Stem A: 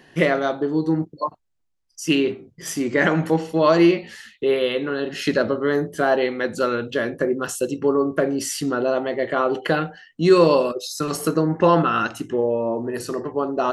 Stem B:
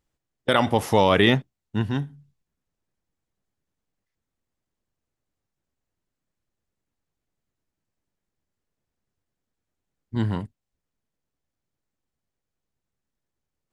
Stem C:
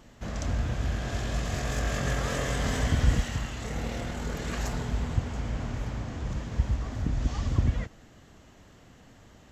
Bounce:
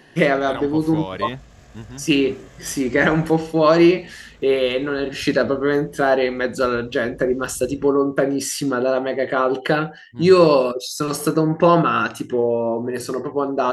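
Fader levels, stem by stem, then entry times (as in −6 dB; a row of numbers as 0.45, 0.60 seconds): +2.0, −11.5, −16.5 decibels; 0.00, 0.00, 0.05 seconds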